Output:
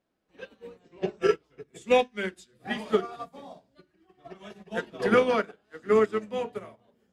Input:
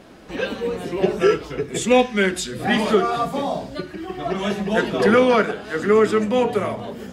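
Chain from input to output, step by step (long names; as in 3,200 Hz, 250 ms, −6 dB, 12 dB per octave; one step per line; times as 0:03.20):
0:00.79–0:01.22: linear-phase brick-wall low-pass 8,200 Hz
mains-hum notches 50/100/150/200/250/300/350/400 Hz
expander for the loud parts 2.5 to 1, over −32 dBFS
level −4 dB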